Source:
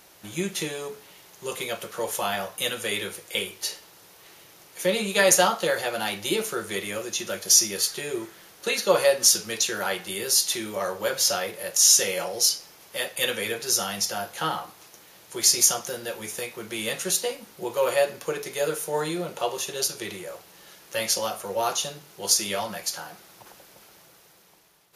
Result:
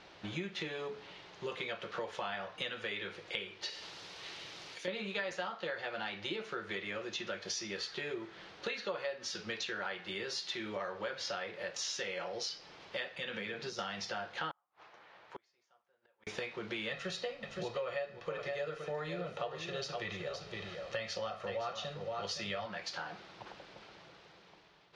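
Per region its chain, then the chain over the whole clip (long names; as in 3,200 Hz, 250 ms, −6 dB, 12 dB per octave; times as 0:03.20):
0:03.70–0:04.88: first-order pre-emphasis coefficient 0.8 + envelope flattener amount 70%
0:13.17–0:13.79: mu-law and A-law mismatch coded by A + parametric band 180 Hz +12 dB 0.62 octaves + downward compressor 4 to 1, threshold −30 dBFS
0:14.51–0:16.27: three-way crossover with the lows and the highs turned down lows −14 dB, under 570 Hz, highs −14 dB, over 2,100 Hz + gate with flip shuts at −34 dBFS, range −37 dB
0:16.91–0:22.66: low-shelf EQ 170 Hz +8 dB + comb filter 1.6 ms, depth 48% + single-tap delay 516 ms −9.5 dB
whole clip: low-pass filter 4,300 Hz 24 dB per octave; dynamic equaliser 1,700 Hz, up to +5 dB, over −42 dBFS, Q 1.2; downward compressor 6 to 1, threshold −37 dBFS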